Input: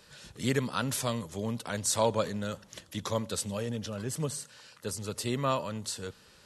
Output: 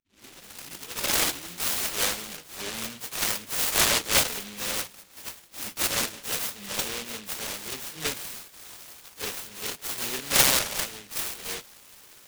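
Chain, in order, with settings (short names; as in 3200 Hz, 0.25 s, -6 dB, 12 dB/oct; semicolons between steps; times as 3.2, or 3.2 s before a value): tape start at the beginning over 1.26 s; speaker cabinet 480–6500 Hz, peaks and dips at 1200 Hz +9 dB, 1700 Hz +7 dB, 2400 Hz -7 dB, 3600 Hz +7 dB; plain phase-vocoder stretch 1.9×; noise-modulated delay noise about 2700 Hz, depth 0.46 ms; gain +8 dB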